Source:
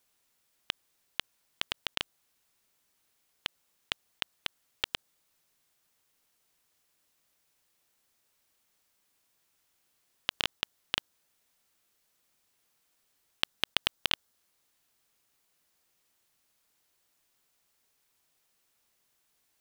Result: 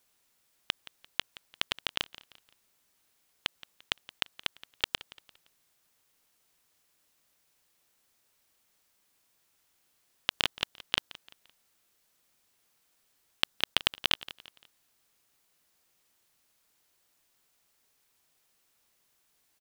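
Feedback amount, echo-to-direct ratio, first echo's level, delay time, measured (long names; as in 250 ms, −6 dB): 38%, −18.0 dB, −18.5 dB, 172 ms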